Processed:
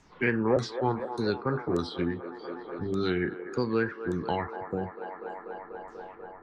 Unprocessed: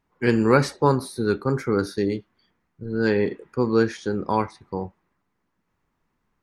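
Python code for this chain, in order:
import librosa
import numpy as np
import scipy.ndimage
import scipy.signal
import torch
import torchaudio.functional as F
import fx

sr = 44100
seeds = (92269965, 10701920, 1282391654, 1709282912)

p1 = fx.pitch_trill(x, sr, semitones=-2.5, every_ms=559)
p2 = fx.spec_erase(p1, sr, start_s=4.57, length_s=1.32, low_hz=790.0, high_hz=6800.0)
p3 = fx.filter_lfo_lowpass(p2, sr, shape='saw_down', hz=1.7, low_hz=540.0, high_hz=7400.0, q=3.9)
p4 = p3 + fx.echo_wet_bandpass(p3, sr, ms=244, feedback_pct=69, hz=800.0, wet_db=-12.5, dry=0)
p5 = fx.band_squash(p4, sr, depth_pct=70)
y = F.gain(torch.from_numpy(p5), -7.0).numpy()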